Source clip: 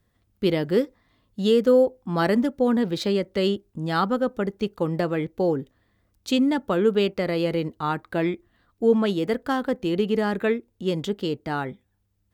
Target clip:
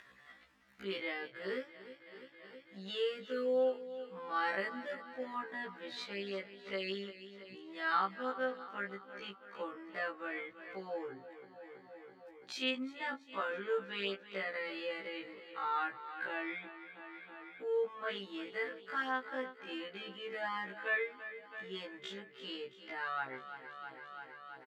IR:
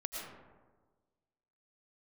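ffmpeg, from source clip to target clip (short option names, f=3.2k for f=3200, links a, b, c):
-filter_complex "[0:a]asplit=2[a][b];[b]aecho=0:1:165|330|495|660|825|990:0.2|0.118|0.0695|0.041|0.0242|0.0143[c];[a][c]amix=inputs=2:normalize=0,acompressor=mode=upward:threshold=-23dB:ratio=2.5,bandpass=f=1.8k:t=q:w=1.5:csg=0,atempo=0.5,afftfilt=real='re*1.73*eq(mod(b,3),0)':imag='im*1.73*eq(mod(b,3),0)':win_size=2048:overlap=0.75,volume=-2dB"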